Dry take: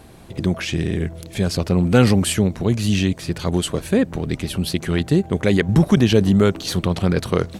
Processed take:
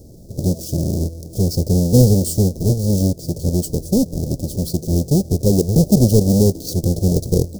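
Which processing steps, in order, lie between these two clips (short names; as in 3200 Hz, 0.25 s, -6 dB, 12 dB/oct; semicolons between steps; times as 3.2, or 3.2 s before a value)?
half-waves squared off; elliptic band-stop 550–5200 Hz, stop band 80 dB; gain -1.5 dB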